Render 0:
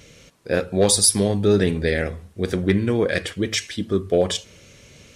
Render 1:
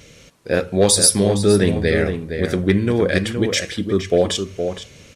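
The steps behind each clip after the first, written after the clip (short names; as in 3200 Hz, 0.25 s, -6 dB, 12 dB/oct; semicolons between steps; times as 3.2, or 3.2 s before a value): outdoor echo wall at 80 m, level -7 dB; gain +2.5 dB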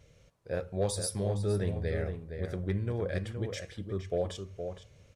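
EQ curve 110 Hz 0 dB, 260 Hz -13 dB, 590 Hz -4 dB, 2700 Hz -13 dB; gain -9 dB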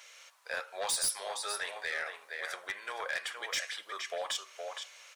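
HPF 940 Hz 24 dB/oct; in parallel at +2.5 dB: compressor, threshold -51 dBFS, peak gain reduction 18.5 dB; on the sum: soft clip -34.5 dBFS, distortion -11 dB; gain +8.5 dB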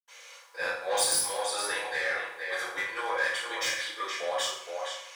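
reverb RT60 0.70 s, pre-delay 77 ms; gain +5 dB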